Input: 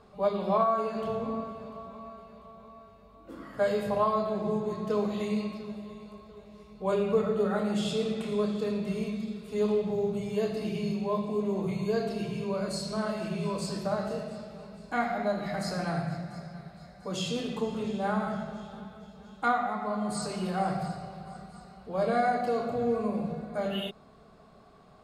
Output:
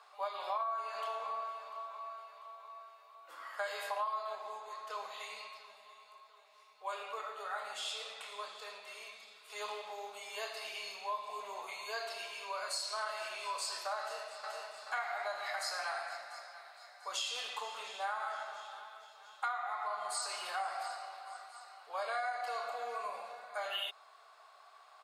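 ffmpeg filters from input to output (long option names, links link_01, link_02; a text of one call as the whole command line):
ffmpeg -i in.wav -filter_complex "[0:a]asettb=1/sr,asplit=3[link_01][link_02][link_03];[link_01]atrim=end=4.354[link_04];[link_02]atrim=start=4.35:end=9.5,asetpts=PTS-STARTPTS,afade=type=in:duration=0.004:curve=qsin,afade=type=out:start_time=5.146:duration=0.004:curve=qsin,flanger=delay=4.7:depth=8.5:regen=-87:speed=1.8:shape=triangular[link_05];[link_03]atrim=start=9.496[link_06];[link_04][link_05]acrossfade=duration=0.004:curve1=hsin:curve2=qsin[link_07];[link_07][link_06]acrossfade=duration=0.004:curve1=qsin:curve2=hsin,asplit=2[link_08][link_09];[link_09]afade=type=in:start_time=14:duration=0.01,afade=type=out:start_time=14.74:duration=0.01,aecho=0:1:430|860|1290|1720|2150|2580|3010:0.707946|0.353973|0.176986|0.0884932|0.0442466|0.0221233|0.0110617[link_10];[link_08][link_10]amix=inputs=2:normalize=0,highpass=frequency=840:width=0.5412,highpass=frequency=840:width=1.3066,acompressor=threshold=-37dB:ratio=6,volume=3dB" out.wav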